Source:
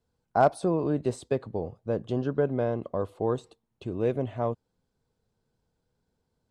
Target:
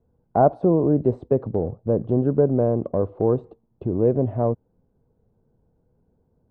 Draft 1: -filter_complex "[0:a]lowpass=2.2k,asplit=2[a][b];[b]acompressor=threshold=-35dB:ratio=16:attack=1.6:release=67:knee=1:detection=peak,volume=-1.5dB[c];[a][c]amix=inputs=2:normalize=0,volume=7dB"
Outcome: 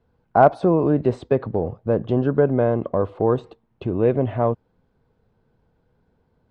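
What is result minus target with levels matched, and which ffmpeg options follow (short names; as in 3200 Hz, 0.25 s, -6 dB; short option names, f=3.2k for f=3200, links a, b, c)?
2000 Hz band +12.5 dB
-filter_complex "[0:a]lowpass=640,asplit=2[a][b];[b]acompressor=threshold=-35dB:ratio=16:attack=1.6:release=67:knee=1:detection=peak,volume=-1.5dB[c];[a][c]amix=inputs=2:normalize=0,volume=7dB"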